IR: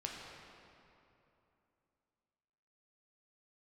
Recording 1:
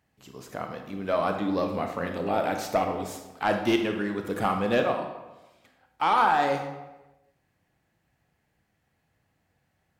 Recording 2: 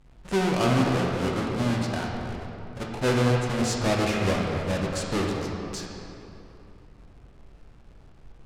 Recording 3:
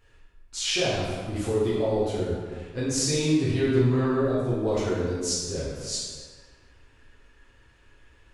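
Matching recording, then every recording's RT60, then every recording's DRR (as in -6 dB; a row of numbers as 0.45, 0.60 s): 2; 1.1, 2.9, 1.6 s; 4.5, -2.0, -10.0 dB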